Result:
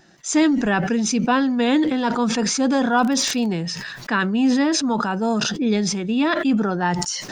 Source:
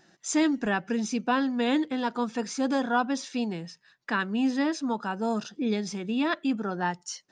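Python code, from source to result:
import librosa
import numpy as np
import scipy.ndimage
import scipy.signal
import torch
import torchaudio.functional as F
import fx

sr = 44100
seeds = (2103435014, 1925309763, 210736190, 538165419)

y = fx.low_shelf(x, sr, hz=92.0, db=9.0)
y = fx.dmg_crackle(y, sr, seeds[0], per_s=51.0, level_db=-35.0, at=(2.91, 3.45), fade=0.02)
y = fx.sustainer(y, sr, db_per_s=30.0)
y = y * 10.0 ** (6.0 / 20.0)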